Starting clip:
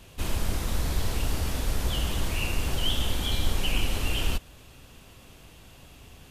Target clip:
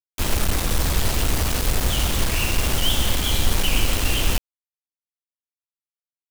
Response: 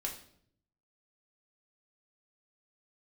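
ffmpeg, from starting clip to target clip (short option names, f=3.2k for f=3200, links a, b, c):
-af "acrusher=bits=4:mix=0:aa=0.000001,volume=5.5dB"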